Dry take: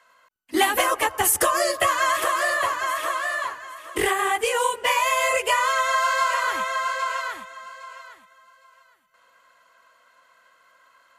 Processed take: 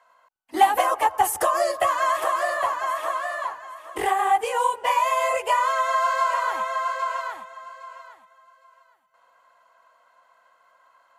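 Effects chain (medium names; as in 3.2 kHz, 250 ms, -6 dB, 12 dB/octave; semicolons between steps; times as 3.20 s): peaking EQ 800 Hz +15 dB 0.94 oct; trim -8 dB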